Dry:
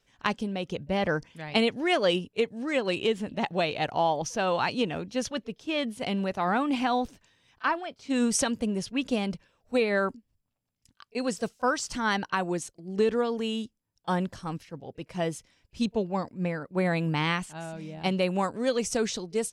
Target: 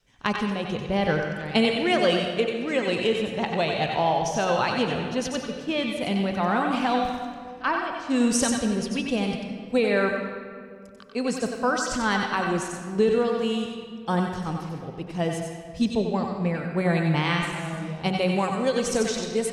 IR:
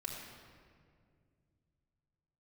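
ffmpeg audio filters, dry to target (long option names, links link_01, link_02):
-filter_complex "[0:a]lowshelf=frequency=380:gain=5,bandreject=frequency=93.12:width_type=h:width=4,bandreject=frequency=186.24:width_type=h:width=4,bandreject=frequency=279.36:width_type=h:width=4,bandreject=frequency=372.48:width_type=h:width=4,bandreject=frequency=465.6:width_type=h:width=4,bandreject=frequency=558.72:width_type=h:width=4,bandreject=frequency=651.84:width_type=h:width=4,bandreject=frequency=744.96:width_type=h:width=4,bandreject=frequency=838.08:width_type=h:width=4,bandreject=frequency=931.2:width_type=h:width=4,bandreject=frequency=1024.32:width_type=h:width=4,bandreject=frequency=1117.44:width_type=h:width=4,bandreject=frequency=1210.56:width_type=h:width=4,bandreject=frequency=1303.68:width_type=h:width=4,bandreject=frequency=1396.8:width_type=h:width=4,bandreject=frequency=1489.92:width_type=h:width=4,bandreject=frequency=1583.04:width_type=h:width=4,bandreject=frequency=1676.16:width_type=h:width=4,bandreject=frequency=1769.28:width_type=h:width=4,bandreject=frequency=1862.4:width_type=h:width=4,bandreject=frequency=1955.52:width_type=h:width=4,bandreject=frequency=2048.64:width_type=h:width=4,bandreject=frequency=2141.76:width_type=h:width=4,bandreject=frequency=2234.88:width_type=h:width=4,bandreject=frequency=2328:width_type=h:width=4,bandreject=frequency=2421.12:width_type=h:width=4,bandreject=frequency=2514.24:width_type=h:width=4,bandreject=frequency=2607.36:width_type=h:width=4,bandreject=frequency=2700.48:width_type=h:width=4,adynamicequalizer=threshold=0.00891:dfrequency=280:dqfactor=2.2:tfrequency=280:tqfactor=2.2:attack=5:release=100:ratio=0.375:range=2.5:mode=cutabove:tftype=bell,asplit=2[link_01][link_02];[1:a]atrim=start_sample=2205,lowshelf=frequency=500:gain=-7.5,adelay=92[link_03];[link_02][link_03]afir=irnorm=-1:irlink=0,volume=-0.5dB[link_04];[link_01][link_04]amix=inputs=2:normalize=0,volume=1dB"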